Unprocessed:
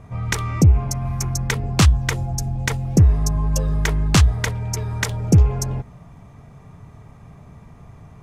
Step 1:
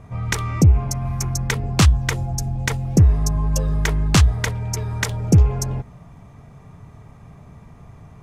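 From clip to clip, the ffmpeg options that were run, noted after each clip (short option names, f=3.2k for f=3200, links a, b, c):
-af anull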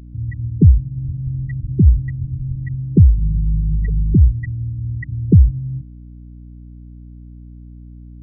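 -af "afftfilt=real='re*gte(hypot(re,im),0.562)':imag='im*gte(hypot(re,im),0.562)':win_size=1024:overlap=0.75,aeval=exprs='val(0)+0.0112*(sin(2*PI*60*n/s)+sin(2*PI*2*60*n/s)/2+sin(2*PI*3*60*n/s)/3+sin(2*PI*4*60*n/s)/4+sin(2*PI*5*60*n/s)/5)':c=same,volume=3.5dB"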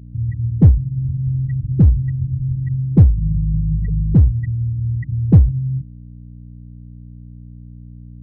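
-filter_complex "[0:a]equalizer=f=130:t=o:w=2.1:g=11.5,asplit=2[a][b];[b]aeval=exprs='clip(val(0),-1,0.631)':c=same,volume=-3dB[c];[a][c]amix=inputs=2:normalize=0,volume=-12dB"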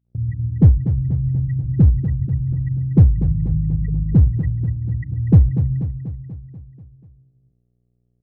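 -filter_complex "[0:a]agate=range=-34dB:threshold=-31dB:ratio=16:detection=peak,asplit=2[a][b];[b]aecho=0:1:243|486|729|972|1215|1458|1701:0.316|0.187|0.11|0.0649|0.0383|0.0226|0.0133[c];[a][c]amix=inputs=2:normalize=0,volume=-1.5dB"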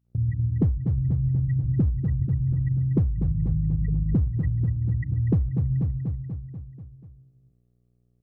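-af "equalizer=f=1.2k:w=4.2:g=5,acompressor=threshold=-20dB:ratio=6"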